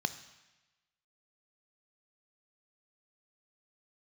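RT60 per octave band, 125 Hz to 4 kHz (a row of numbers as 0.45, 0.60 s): 1.1, 1.0, 1.1, 1.1, 1.2, 1.1 s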